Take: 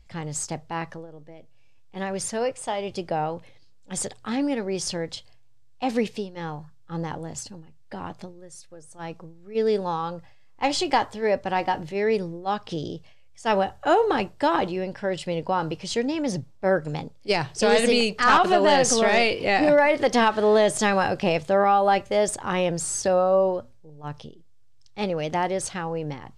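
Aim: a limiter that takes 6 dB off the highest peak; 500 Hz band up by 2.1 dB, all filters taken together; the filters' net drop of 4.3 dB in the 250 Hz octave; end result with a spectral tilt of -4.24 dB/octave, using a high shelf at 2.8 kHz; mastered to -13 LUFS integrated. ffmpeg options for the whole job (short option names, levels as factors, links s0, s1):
-af "equalizer=f=250:t=o:g=-7.5,equalizer=f=500:t=o:g=4.5,highshelf=f=2800:g=-6,volume=3.98,alimiter=limit=0.841:level=0:latency=1"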